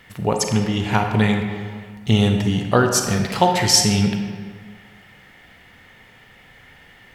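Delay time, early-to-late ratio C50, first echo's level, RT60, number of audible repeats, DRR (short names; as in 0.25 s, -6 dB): none, 4.5 dB, none, 1.8 s, none, 3.5 dB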